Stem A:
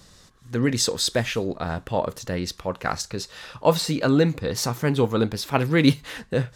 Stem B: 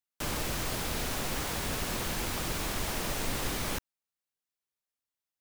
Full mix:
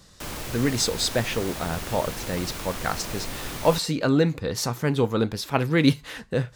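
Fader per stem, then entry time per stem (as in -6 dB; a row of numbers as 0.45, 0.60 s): -1.5, -1.0 dB; 0.00, 0.00 s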